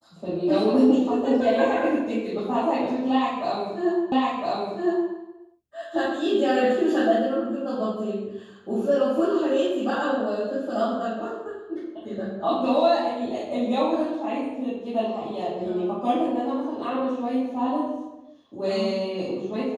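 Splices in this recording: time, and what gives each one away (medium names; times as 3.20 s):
4.12 s: repeat of the last 1.01 s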